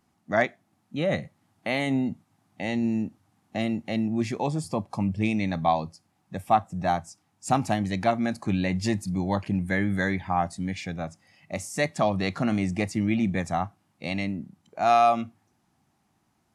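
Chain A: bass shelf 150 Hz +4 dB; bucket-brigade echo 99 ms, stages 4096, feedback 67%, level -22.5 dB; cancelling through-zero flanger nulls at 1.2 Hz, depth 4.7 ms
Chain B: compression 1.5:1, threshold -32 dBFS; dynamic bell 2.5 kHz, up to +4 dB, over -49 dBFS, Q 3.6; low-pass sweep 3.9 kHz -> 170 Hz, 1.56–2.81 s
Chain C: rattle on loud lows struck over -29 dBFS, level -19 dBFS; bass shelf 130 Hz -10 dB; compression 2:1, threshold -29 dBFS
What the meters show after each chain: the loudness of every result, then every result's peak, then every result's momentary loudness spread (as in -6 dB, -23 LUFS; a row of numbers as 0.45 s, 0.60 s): -29.0 LUFS, -30.5 LUFS, -32.0 LUFS; -10.0 dBFS, -10.5 dBFS, -14.5 dBFS; 12 LU, 12 LU, 9 LU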